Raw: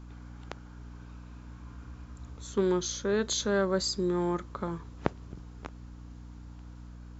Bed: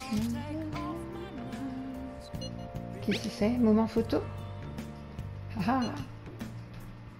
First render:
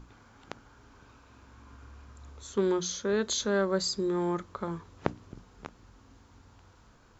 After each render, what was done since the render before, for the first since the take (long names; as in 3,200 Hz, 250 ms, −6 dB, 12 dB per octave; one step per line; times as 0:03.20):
mains-hum notches 60/120/180/240/300 Hz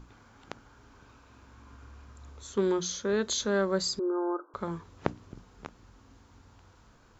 0:03.99–0:04.54: linear-phase brick-wall band-pass 270–1,600 Hz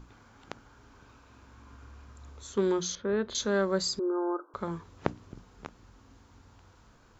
0:02.95–0:03.35: high-frequency loss of the air 370 metres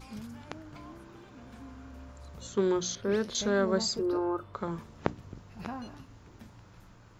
mix in bed −11.5 dB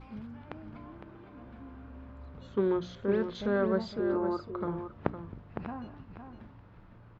high-frequency loss of the air 410 metres
on a send: single-tap delay 509 ms −8.5 dB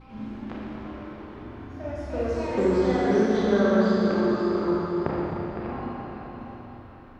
four-comb reverb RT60 3.6 s, combs from 29 ms, DRR −6.5 dB
delay with pitch and tempo change per echo 89 ms, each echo +4 semitones, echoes 2, each echo −6 dB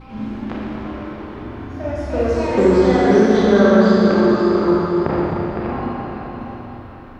level +9 dB
brickwall limiter −2 dBFS, peak gain reduction 3 dB